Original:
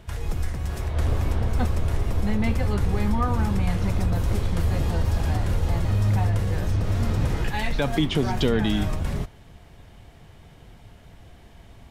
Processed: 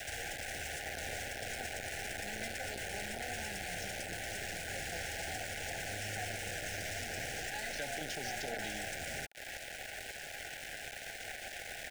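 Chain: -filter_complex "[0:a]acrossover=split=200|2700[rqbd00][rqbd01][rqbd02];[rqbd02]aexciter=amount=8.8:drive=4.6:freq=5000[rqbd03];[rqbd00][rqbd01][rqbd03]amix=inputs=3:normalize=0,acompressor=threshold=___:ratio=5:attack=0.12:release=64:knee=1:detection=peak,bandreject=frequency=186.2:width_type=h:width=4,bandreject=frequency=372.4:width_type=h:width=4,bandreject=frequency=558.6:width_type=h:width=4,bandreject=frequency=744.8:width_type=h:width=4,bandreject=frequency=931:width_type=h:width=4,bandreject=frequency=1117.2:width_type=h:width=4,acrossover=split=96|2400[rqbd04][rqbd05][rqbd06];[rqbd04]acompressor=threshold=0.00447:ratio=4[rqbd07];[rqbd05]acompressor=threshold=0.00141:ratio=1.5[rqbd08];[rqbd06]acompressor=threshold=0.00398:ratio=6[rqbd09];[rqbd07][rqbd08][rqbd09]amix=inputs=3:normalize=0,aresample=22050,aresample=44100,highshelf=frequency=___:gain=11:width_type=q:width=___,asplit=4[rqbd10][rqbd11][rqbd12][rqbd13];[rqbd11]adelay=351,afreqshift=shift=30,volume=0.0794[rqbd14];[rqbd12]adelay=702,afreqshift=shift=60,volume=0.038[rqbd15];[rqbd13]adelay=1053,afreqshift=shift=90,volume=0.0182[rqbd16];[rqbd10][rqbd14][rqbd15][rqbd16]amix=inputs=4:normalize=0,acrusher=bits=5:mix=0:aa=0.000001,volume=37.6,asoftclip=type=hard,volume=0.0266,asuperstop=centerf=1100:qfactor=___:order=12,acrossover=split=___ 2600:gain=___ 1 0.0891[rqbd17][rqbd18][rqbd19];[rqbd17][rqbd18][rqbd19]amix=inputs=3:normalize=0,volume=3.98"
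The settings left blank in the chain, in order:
0.0447, 3800, 1.5, 1.7, 580, 0.158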